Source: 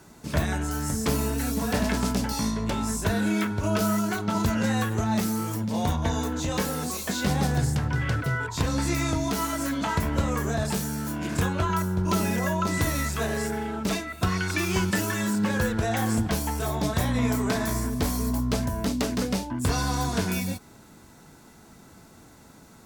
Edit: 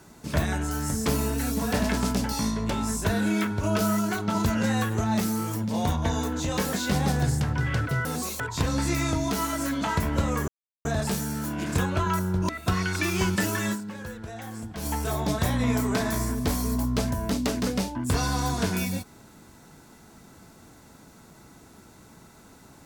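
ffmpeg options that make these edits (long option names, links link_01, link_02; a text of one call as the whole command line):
ffmpeg -i in.wav -filter_complex "[0:a]asplit=8[link_01][link_02][link_03][link_04][link_05][link_06][link_07][link_08];[link_01]atrim=end=6.732[link_09];[link_02]atrim=start=7.078:end=8.402[link_10];[link_03]atrim=start=6.728:end=7.082[link_11];[link_04]atrim=start=8.398:end=10.48,asetpts=PTS-STARTPTS,afade=type=out:start_time=2.078:duration=0.004:curve=hsin,apad=pad_dur=0.37[link_12];[link_05]atrim=start=10.48:end=12.122,asetpts=PTS-STARTPTS,afade=type=in:duration=0.004:curve=hsin[link_13];[link_06]atrim=start=14.038:end=15.68,asetpts=PTS-STARTPTS,afade=type=out:start_time=1.232:duration=0.41:curve=exp:silence=0.237137[link_14];[link_07]atrim=start=15.68:end=16,asetpts=PTS-STARTPTS,volume=-12.5dB[link_15];[link_08]atrim=start=16,asetpts=PTS-STARTPTS,afade=type=in:duration=0.41:curve=exp:silence=0.237137[link_16];[link_09][link_10]acrossfade=duration=0.004:curve1=hsin:curve2=hsin[link_17];[link_17][link_11]acrossfade=duration=0.004:curve1=hsin:curve2=hsin[link_18];[link_12][link_13]concat=n=2:v=0:a=1[link_19];[link_18][link_19]acrossfade=duration=0.004:curve1=hsin:curve2=hsin[link_20];[link_14][link_15][link_16]concat=n=3:v=0:a=1[link_21];[link_20][link_21]acrossfade=duration=0.004:curve1=hsin:curve2=hsin" out.wav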